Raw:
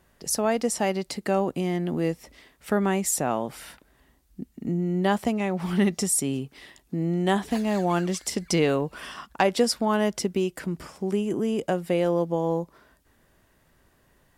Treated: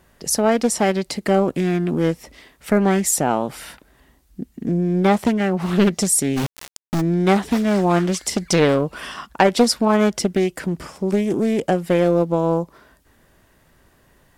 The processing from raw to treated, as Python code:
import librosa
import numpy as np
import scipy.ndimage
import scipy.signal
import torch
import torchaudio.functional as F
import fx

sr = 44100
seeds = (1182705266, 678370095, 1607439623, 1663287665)

y = fx.quant_companded(x, sr, bits=2, at=(6.36, 7.0), fade=0.02)
y = fx.doppler_dist(y, sr, depth_ms=0.53)
y = y * 10.0 ** (6.5 / 20.0)